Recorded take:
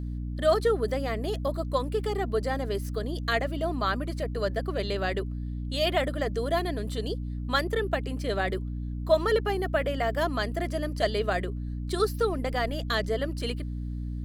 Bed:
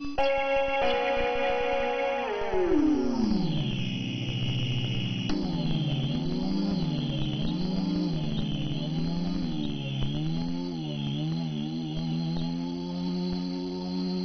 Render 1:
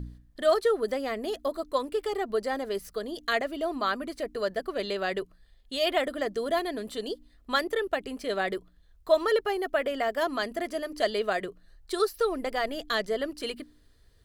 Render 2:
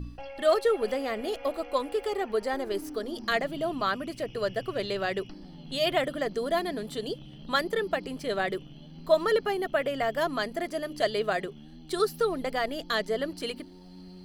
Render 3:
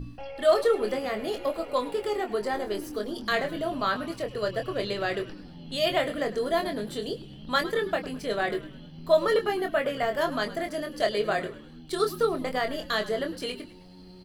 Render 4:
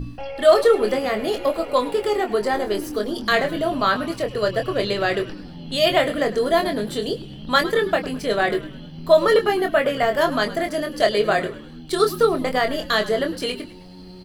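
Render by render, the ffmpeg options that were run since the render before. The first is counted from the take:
-af "bandreject=f=60:t=h:w=4,bandreject=f=120:t=h:w=4,bandreject=f=180:t=h:w=4,bandreject=f=240:t=h:w=4,bandreject=f=300:t=h:w=4"
-filter_complex "[1:a]volume=-17dB[a];[0:a][a]amix=inputs=2:normalize=0"
-filter_complex "[0:a]asplit=2[a][b];[b]adelay=24,volume=-6dB[c];[a][c]amix=inputs=2:normalize=0,asplit=5[d][e][f][g][h];[e]adelay=104,afreqshift=-66,volume=-16dB[i];[f]adelay=208,afreqshift=-132,volume=-22.9dB[j];[g]adelay=312,afreqshift=-198,volume=-29.9dB[k];[h]adelay=416,afreqshift=-264,volume=-36.8dB[l];[d][i][j][k][l]amix=inputs=5:normalize=0"
-af "volume=7.5dB,alimiter=limit=-3dB:level=0:latency=1"

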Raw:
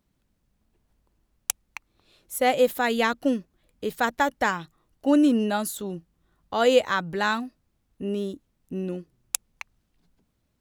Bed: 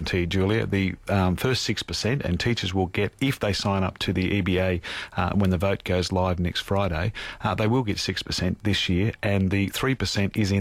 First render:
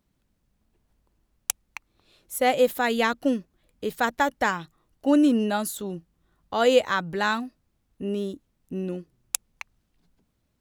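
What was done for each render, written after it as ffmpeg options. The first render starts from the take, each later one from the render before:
-af anull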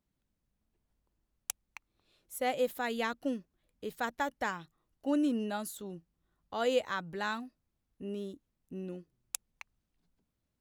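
-af "volume=-10.5dB"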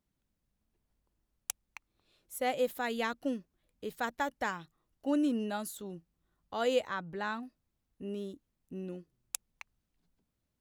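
-filter_complex "[0:a]asettb=1/sr,asplit=3[a][b][c];[a]atrim=end=6.874[d];[b]atrim=start=6.87:end=7.43,asetpts=PTS-STARTPTS,afade=t=in:d=0.004:c=qsin,afade=t=out:st=0.556:d=0.004:c=qsin,highshelf=f=3.6k:g=-10.5[e];[c]atrim=start=7.426[f];[d][e]acrossfade=d=0.004:c1=hsin:c2=qsin[g];[g][f]acrossfade=d=0.004:c1=qsin:c2=hsin"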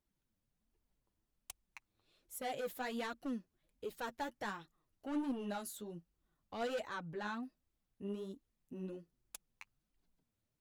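-af "asoftclip=type=tanh:threshold=-31dB,flanger=delay=2:depth=8.6:regen=19:speed=1.3:shape=triangular"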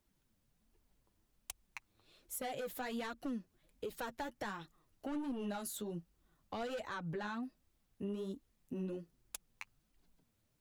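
-filter_complex "[0:a]asplit=2[a][b];[b]alimiter=level_in=14.5dB:limit=-24dB:level=0:latency=1:release=83,volume=-14.5dB,volume=3dB[c];[a][c]amix=inputs=2:normalize=0,acrossover=split=140[d][e];[e]acompressor=threshold=-40dB:ratio=3[f];[d][f]amix=inputs=2:normalize=0"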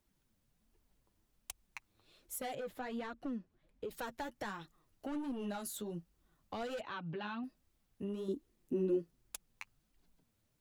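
-filter_complex "[0:a]asettb=1/sr,asplit=3[a][b][c];[a]atrim=end=2.554[d];[b]atrim=start=2.55:end=3.91,asetpts=PTS-STARTPTS,afade=t=in:d=0.004:c=qsin,afade=t=out:st=1.356:d=0.004:c=qsin,lowpass=f=2k:p=1[e];[c]atrim=start=3.906[f];[d][e]acrossfade=d=0.004:c1=hsin:c2=qsin[g];[g][f]acrossfade=d=0.004:c1=qsin:c2=hsin,asettb=1/sr,asplit=3[h][i][j];[h]atrim=end=6.814[k];[i]atrim=start=6.81:end=7.44,asetpts=PTS-STARTPTS,afade=t=in:d=0.004:c=qsin,afade=t=out:st=0.626:d=0.004:c=qsin,highpass=120,equalizer=f=500:t=q:w=4:g=-6,equalizer=f=1.9k:t=q:w=4:g=-5,equalizer=f=2.8k:t=q:w=4:g=9,lowpass=f=4.3k:w=0.5412,lowpass=f=4.3k:w=1.3066[l];[j]atrim=start=7.436[m];[k][l]acrossfade=d=0.004:c1=hsin:c2=qsin[n];[n][m]acrossfade=d=0.004:c1=qsin:c2=hsin,asettb=1/sr,asplit=3[o][p][q];[o]atrim=end=8.284[r];[p]atrim=start=8.28:end=9.02,asetpts=PTS-STARTPTS,afade=t=in:d=0.004:c=qsin,afade=t=out:st=0.736:d=0.004:c=qsin,equalizer=f=350:w=2:g=12.5[s];[q]atrim=start=9.016[t];[r][s]acrossfade=d=0.004:c1=hsin:c2=qsin[u];[u][t]acrossfade=d=0.004:c1=qsin:c2=hsin"

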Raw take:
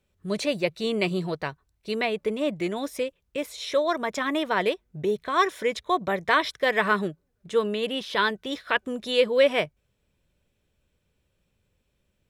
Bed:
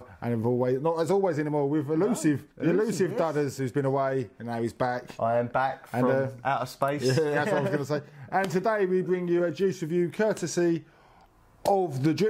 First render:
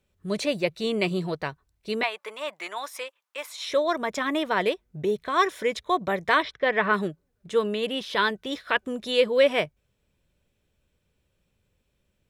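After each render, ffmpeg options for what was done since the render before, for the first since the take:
-filter_complex "[0:a]asettb=1/sr,asplit=3[a][b][c];[a]atrim=end=2.034[d];[b]atrim=start=2.03:end=3.68,asetpts=PTS-STARTPTS,afade=t=in:d=0.004:c=qsin,afade=t=out:st=1.646:d=0.004:c=qsin,highpass=f=1k:t=q:w=2.1[e];[c]atrim=start=3.676[f];[d][e]acrossfade=d=0.004:c1=hsin:c2=qsin[g];[g][f]acrossfade=d=0.004:c1=qsin:c2=hsin,asplit=3[h][i][j];[h]afade=t=out:st=6.42:d=0.02[k];[i]lowpass=3k,afade=t=in:st=6.42:d=0.02,afade=t=out:st=6.92:d=0.02[l];[j]afade=t=in:st=6.92:d=0.02[m];[k][l][m]amix=inputs=3:normalize=0"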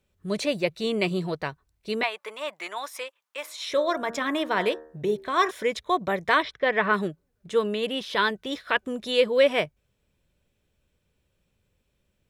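-filter_complex "[0:a]asettb=1/sr,asplit=3[a][b][c];[a]atrim=end=3.404[d];[b]atrim=start=3.4:end=5.51,asetpts=PTS-STARTPTS,afade=t=in:d=0.004:c=qsin,afade=t=out:st=2.106:d=0.004:c=qsin,bandreject=f=77.64:t=h:w=4,bandreject=f=155.28:t=h:w=4,bandreject=f=232.92:t=h:w=4,bandreject=f=310.56:t=h:w=4,bandreject=f=388.2:t=h:w=4,bandreject=f=465.84:t=h:w=4,bandreject=f=543.48:t=h:w=4,bandreject=f=621.12:t=h:w=4,bandreject=f=698.76:t=h:w=4,bandreject=f=776.4:t=h:w=4,bandreject=f=854.04:t=h:w=4,bandreject=f=931.68:t=h:w=4,bandreject=f=1.00932k:t=h:w=4,bandreject=f=1.08696k:t=h:w=4,bandreject=f=1.1646k:t=h:w=4,bandreject=f=1.24224k:t=h:w=4,bandreject=f=1.31988k:t=h:w=4,bandreject=f=1.39752k:t=h:w=4,bandreject=f=1.47516k:t=h:w=4,bandreject=f=1.5528k:t=h:w=4,bandreject=f=1.63044k:t=h:w=4,bandreject=f=1.70808k:t=h:w=4,bandreject=f=1.78572k:t=h:w=4,bandreject=f=1.86336k:t=h:w=4[e];[c]atrim=start=5.506[f];[d][e]acrossfade=d=0.004:c1=hsin:c2=qsin[g];[g][f]acrossfade=d=0.004:c1=qsin:c2=hsin"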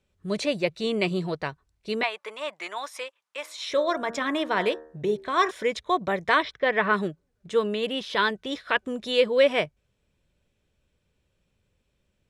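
-af "lowpass=9.3k"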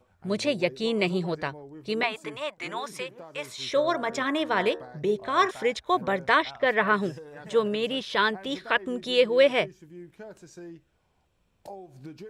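-filter_complex "[1:a]volume=-18.5dB[a];[0:a][a]amix=inputs=2:normalize=0"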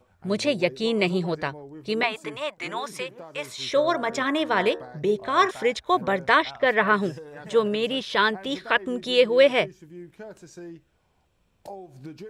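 -af "volume=2.5dB"

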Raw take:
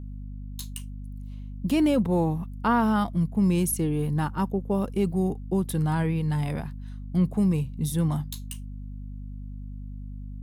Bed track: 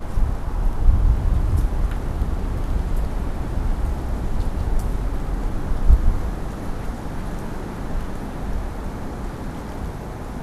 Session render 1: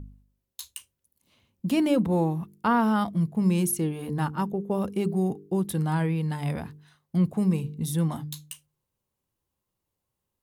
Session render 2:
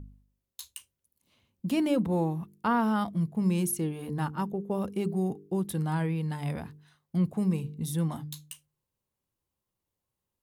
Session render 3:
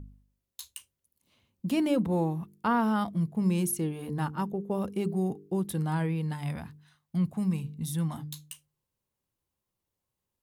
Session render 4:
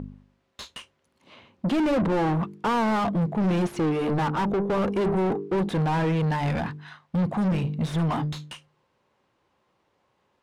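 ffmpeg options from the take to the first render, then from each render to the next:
-af "bandreject=f=50:t=h:w=4,bandreject=f=100:t=h:w=4,bandreject=f=150:t=h:w=4,bandreject=f=200:t=h:w=4,bandreject=f=250:t=h:w=4,bandreject=f=300:t=h:w=4,bandreject=f=350:t=h:w=4,bandreject=f=400:t=h:w=4,bandreject=f=450:t=h:w=4"
-af "volume=-3.5dB"
-filter_complex "[0:a]asettb=1/sr,asplit=3[a][b][c];[a]atrim=end=6.334[d];[b]atrim=start=6.33:end=8.18,asetpts=PTS-STARTPTS,afade=t=in:d=0.004:c=qsin,afade=t=out:st=1.846:d=0.004:c=qsin,equalizer=f=430:w=1.5:g=-9[e];[c]atrim=start=8.176[f];[d][e]acrossfade=d=0.004:c1=hsin:c2=qsin[g];[g][f]acrossfade=d=0.004:c1=qsin:c2=hsin"
-filter_complex "[0:a]asplit=2[a][b];[b]highpass=f=720:p=1,volume=33dB,asoftclip=type=tanh:threshold=-16dB[c];[a][c]amix=inputs=2:normalize=0,lowpass=f=1.3k:p=1,volume=-6dB,adynamicsmooth=sensitivity=7:basefreq=5.4k"

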